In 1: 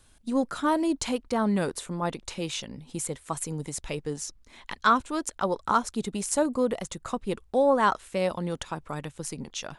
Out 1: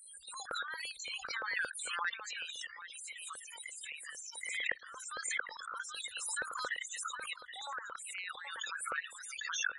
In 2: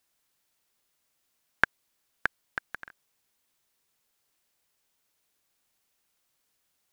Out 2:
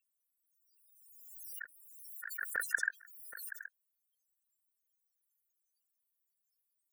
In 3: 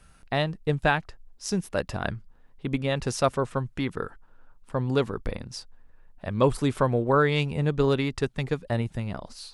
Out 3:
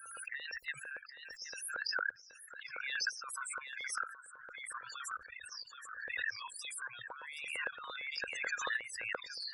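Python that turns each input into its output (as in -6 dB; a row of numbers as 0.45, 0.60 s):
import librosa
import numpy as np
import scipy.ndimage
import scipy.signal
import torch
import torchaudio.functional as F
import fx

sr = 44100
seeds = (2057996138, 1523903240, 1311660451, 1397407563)

p1 = fx.noise_reduce_blind(x, sr, reduce_db=7)
p2 = scipy.signal.sosfilt(scipy.signal.cheby2(4, 80, [190.0, 420.0], 'bandstop', fs=sr, output='sos'), p1)
p3 = fx.high_shelf(p2, sr, hz=4100.0, db=8.0)
p4 = fx.spec_topn(p3, sr, count=16)
p5 = fx.peak_eq(p4, sr, hz=210.0, db=11.5, octaves=1.4)
p6 = fx.over_compress(p5, sr, threshold_db=-43.0, ratio=-1.0)
p7 = fx.filter_lfo_highpass(p6, sr, shape='square', hz=8.8, low_hz=510.0, high_hz=1600.0, q=4.8)
p8 = p7 + fx.echo_single(p7, sr, ms=775, db=-13.5, dry=0)
p9 = fx.pre_swell(p8, sr, db_per_s=33.0)
y = p9 * librosa.db_to_amplitude(-5.0)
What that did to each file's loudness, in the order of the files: -11.0, -7.5, -13.0 LU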